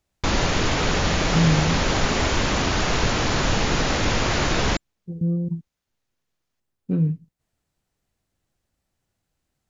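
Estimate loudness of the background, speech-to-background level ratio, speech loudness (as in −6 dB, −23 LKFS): −22.0 LKFS, −3.0 dB, −25.0 LKFS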